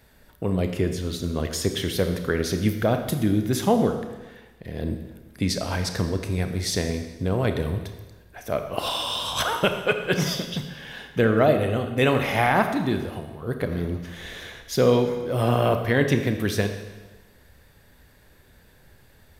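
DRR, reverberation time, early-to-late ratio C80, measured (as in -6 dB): 6.0 dB, 1.2 s, 9.5 dB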